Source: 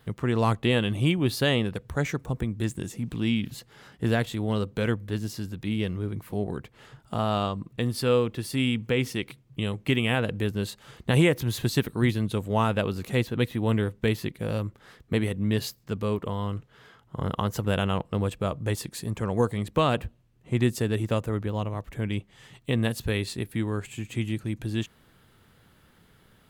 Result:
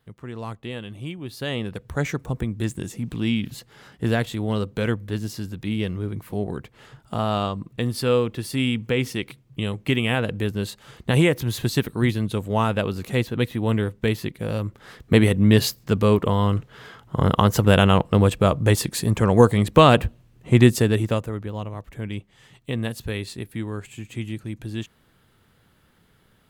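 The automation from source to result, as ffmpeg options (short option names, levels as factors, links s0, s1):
-af "volume=3.16,afade=t=in:st=1.3:d=0.72:silence=0.237137,afade=t=in:st=14.59:d=0.61:silence=0.421697,afade=t=out:st=20.59:d=0.74:silence=0.266073"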